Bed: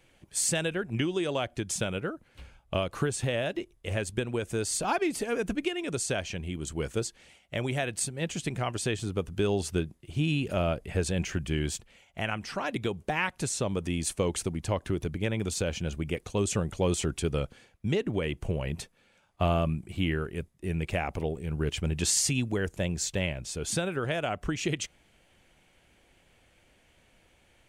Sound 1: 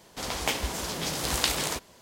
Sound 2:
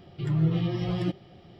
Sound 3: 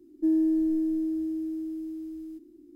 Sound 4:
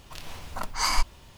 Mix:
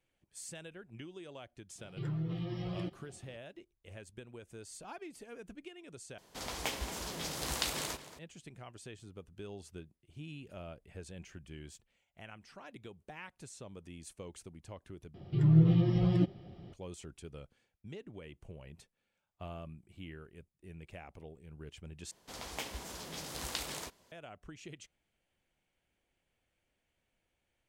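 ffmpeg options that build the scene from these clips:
ffmpeg -i bed.wav -i cue0.wav -i cue1.wav -filter_complex "[2:a]asplit=2[link_01][link_02];[1:a]asplit=2[link_03][link_04];[0:a]volume=-19dB[link_05];[link_01]alimiter=limit=-21.5dB:level=0:latency=1:release=113[link_06];[link_03]asplit=2[link_07][link_08];[link_08]adelay=227.4,volume=-13dB,highshelf=frequency=4000:gain=-5.12[link_09];[link_07][link_09]amix=inputs=2:normalize=0[link_10];[link_02]lowshelf=frequency=490:gain=9[link_11];[link_05]asplit=4[link_12][link_13][link_14][link_15];[link_12]atrim=end=6.184[link_16];[link_10]atrim=end=2.01,asetpts=PTS-STARTPTS,volume=-8.5dB[link_17];[link_13]atrim=start=8.186:end=15.144[link_18];[link_11]atrim=end=1.59,asetpts=PTS-STARTPTS,volume=-7dB[link_19];[link_14]atrim=start=16.726:end=22.114[link_20];[link_04]atrim=end=2.01,asetpts=PTS-STARTPTS,volume=-12.5dB[link_21];[link_15]atrim=start=24.116[link_22];[link_06]atrim=end=1.59,asetpts=PTS-STARTPTS,volume=-8dB,afade=type=in:duration=0.004:curve=hsin,afade=type=out:start_time=1.586:duration=0.004:curve=hsin,adelay=1780[link_23];[link_16][link_17]acrossfade=duration=0.004:curve1=hsin:curve2=hsin[link_24];[link_24][link_18]acrossfade=duration=0.004:curve1=hsin:curve2=hsin[link_25];[link_25][link_19]acrossfade=duration=0.004:curve1=hsin:curve2=hsin[link_26];[link_26][link_20]acrossfade=duration=0.004:curve1=hsin:curve2=hsin[link_27];[link_27][link_21]acrossfade=duration=0.004:curve1=hsin:curve2=hsin[link_28];[link_28][link_22]acrossfade=duration=0.004:curve1=hsin:curve2=hsin[link_29];[link_29][link_23]amix=inputs=2:normalize=0" out.wav

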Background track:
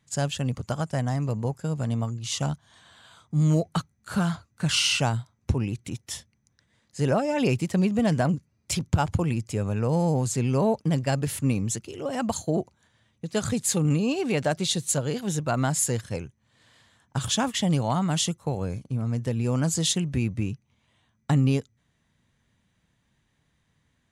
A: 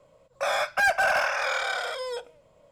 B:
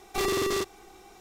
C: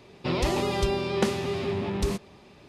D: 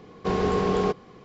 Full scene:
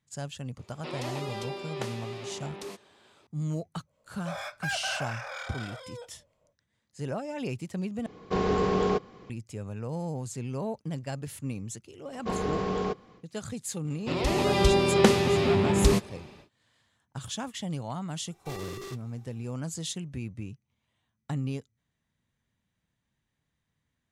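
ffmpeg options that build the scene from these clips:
ffmpeg -i bed.wav -i cue0.wav -i cue1.wav -i cue2.wav -i cue3.wav -filter_complex "[3:a]asplit=2[link_01][link_02];[4:a]asplit=2[link_03][link_04];[0:a]volume=-10.5dB[link_05];[link_01]highpass=350[link_06];[1:a]acrossover=split=1200[link_07][link_08];[link_07]aeval=exprs='val(0)*(1-0.5/2+0.5/2*cos(2*PI*4.2*n/s))':channel_layout=same[link_09];[link_08]aeval=exprs='val(0)*(1-0.5/2-0.5/2*cos(2*PI*4.2*n/s))':channel_layout=same[link_10];[link_09][link_10]amix=inputs=2:normalize=0[link_11];[link_04]bandreject=frequency=390:width=13[link_12];[link_02]dynaudnorm=framelen=260:gausssize=5:maxgain=12.5dB[link_13];[2:a]flanger=delay=5.4:depth=3.5:regen=-66:speed=1.9:shape=triangular[link_14];[link_05]asplit=2[link_15][link_16];[link_15]atrim=end=8.064[link_17];[link_03]atrim=end=1.24,asetpts=PTS-STARTPTS,volume=-2dB[link_18];[link_16]atrim=start=9.296[link_19];[link_06]atrim=end=2.68,asetpts=PTS-STARTPTS,volume=-8dB,afade=type=in:duration=0.004:curve=hsin,afade=type=out:start_time=2.676:duration=0.004:curve=hsin,adelay=590[link_20];[link_11]atrim=end=2.71,asetpts=PTS-STARTPTS,volume=-9.5dB,afade=type=in:duration=0.1,afade=type=out:start_time=2.61:duration=0.1,adelay=169785S[link_21];[link_12]atrim=end=1.24,asetpts=PTS-STARTPTS,volume=-5.5dB,afade=type=in:duration=0.1,afade=type=out:start_time=1.14:duration=0.1,adelay=12010[link_22];[link_13]atrim=end=2.68,asetpts=PTS-STARTPTS,volume=-4.5dB,afade=type=in:duration=0.1,afade=type=out:start_time=2.58:duration=0.1,adelay=13820[link_23];[link_14]atrim=end=1.2,asetpts=PTS-STARTPTS,volume=-9dB,afade=type=in:duration=0.004:curve=hsin,afade=type=out:start_time=1.196:duration=0.004:curve=hsin,adelay=18310[link_24];[link_17][link_18]acrossfade=duration=0.004:curve1=hsin:curve2=hsin[link_25];[link_25][link_19]acrossfade=duration=0.004:curve1=hsin:curve2=hsin[link_26];[link_26][link_20][link_21][link_22][link_23][link_24]amix=inputs=6:normalize=0" out.wav

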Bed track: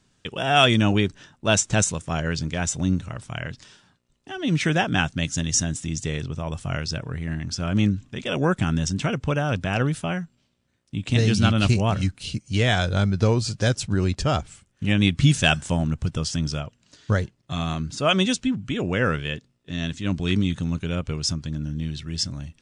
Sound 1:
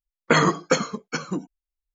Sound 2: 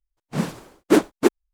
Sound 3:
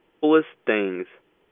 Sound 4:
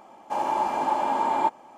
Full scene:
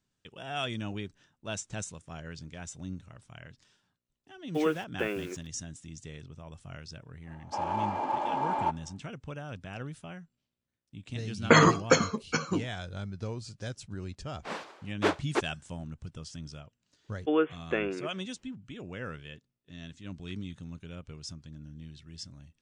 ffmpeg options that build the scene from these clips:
ffmpeg -i bed.wav -i cue0.wav -i cue1.wav -i cue2.wav -i cue3.wav -filter_complex "[3:a]asplit=2[link_01][link_02];[0:a]volume=-17dB[link_03];[link_01]acrusher=bits=6:mix=0:aa=0.000001[link_04];[4:a]adynamicsmooth=sensitivity=3:basefreq=3500[link_05];[1:a]asplit=2[link_06][link_07];[link_07]adelay=13,volume=-12dB[link_08];[link_06][link_08]amix=inputs=2:normalize=0[link_09];[2:a]highpass=610,lowpass=4300[link_10];[link_04]atrim=end=1.51,asetpts=PTS-STARTPTS,volume=-10.5dB,afade=type=in:duration=0.004:curve=hsin,afade=type=out:start_time=1.506:duration=0.004:curve=hsin,adelay=4320[link_11];[link_05]atrim=end=1.77,asetpts=PTS-STARTPTS,volume=-6dB,afade=type=in:duration=0.1,afade=type=out:start_time=1.67:duration=0.1,adelay=318402S[link_12];[link_09]atrim=end=1.94,asetpts=PTS-STARTPTS,volume=-1.5dB,afade=type=in:duration=0.004:curve=hsin,afade=type=out:start_time=1.936:duration=0.004:curve=hsin,adelay=11200[link_13];[link_10]atrim=end=1.53,asetpts=PTS-STARTPTS,volume=-3.5dB,afade=type=in:duration=0.004:curve=hsin,afade=type=out:start_time=1.526:duration=0.004:curve=hsin,adelay=622692S[link_14];[link_02]atrim=end=1.51,asetpts=PTS-STARTPTS,volume=-8.5dB,afade=type=in:duration=0.004:curve=hsin,afade=type=out:start_time=1.506:duration=0.004:curve=hsin,adelay=17040[link_15];[link_03][link_11][link_12][link_13][link_14][link_15]amix=inputs=6:normalize=0" out.wav

